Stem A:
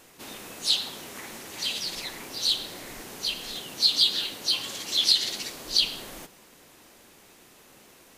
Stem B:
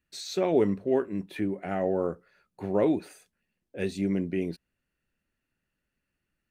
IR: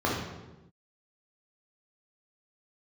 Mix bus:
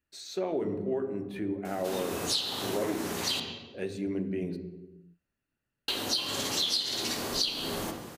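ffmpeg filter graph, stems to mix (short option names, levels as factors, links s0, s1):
-filter_complex "[0:a]adelay=1650,volume=1.41,asplit=3[s0][s1][s2];[s0]atrim=end=3.4,asetpts=PTS-STARTPTS,afade=t=out:st=3.396:d=0.004:c=hsin[s3];[s1]atrim=start=3.4:end=5.88,asetpts=PTS-STARTPTS,volume=0[s4];[s2]atrim=start=5.88,asetpts=PTS-STARTPTS,afade=t=in:d=0.004:c=hsin[s5];[s3][s4][s5]concat=n=3:v=0:a=1,asplit=2[s6][s7];[s7]volume=0.237[s8];[1:a]volume=0.531,asplit=2[s9][s10];[s10]volume=0.126[s11];[2:a]atrim=start_sample=2205[s12];[s8][s11]amix=inputs=2:normalize=0[s13];[s13][s12]afir=irnorm=-1:irlink=0[s14];[s6][s9][s14]amix=inputs=3:normalize=0,acompressor=threshold=0.0447:ratio=6"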